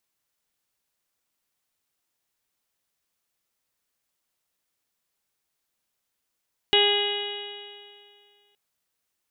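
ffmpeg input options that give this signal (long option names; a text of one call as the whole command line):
ffmpeg -f lavfi -i "aevalsrc='0.0891*pow(10,-3*t/2.19)*sin(2*PI*408.17*t)+0.0501*pow(10,-3*t/2.19)*sin(2*PI*817.34*t)+0.01*pow(10,-3*t/2.19)*sin(2*PI*1228.51*t)+0.0266*pow(10,-3*t/2.19)*sin(2*PI*1642.67*t)+0.0398*pow(10,-3*t/2.19)*sin(2*PI*2060.8*t)+0.0316*pow(10,-3*t/2.19)*sin(2*PI*2483.87*t)+0.133*pow(10,-3*t/2.19)*sin(2*PI*2912.81*t)+0.0562*pow(10,-3*t/2.19)*sin(2*PI*3348.55*t)+0.0501*pow(10,-3*t/2.19)*sin(2*PI*3791.99*t)':duration=1.82:sample_rate=44100" out.wav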